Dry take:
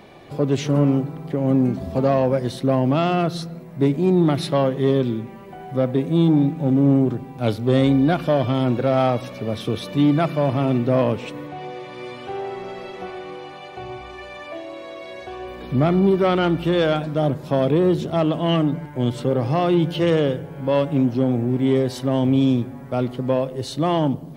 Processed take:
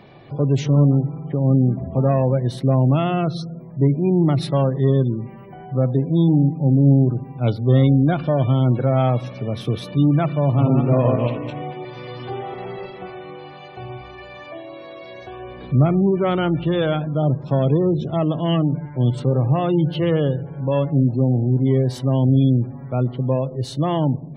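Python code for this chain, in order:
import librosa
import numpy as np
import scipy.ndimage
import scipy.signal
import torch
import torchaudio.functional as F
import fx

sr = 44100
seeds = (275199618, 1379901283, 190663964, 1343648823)

y = fx.reverse_delay_fb(x, sr, ms=115, feedback_pct=49, wet_db=-1.5, at=(10.47, 12.86))
y = fx.spec_gate(y, sr, threshold_db=-30, keep='strong')
y = fx.peak_eq(y, sr, hz=130.0, db=9.5, octaves=0.57)
y = y * 10.0 ** (-2.0 / 20.0)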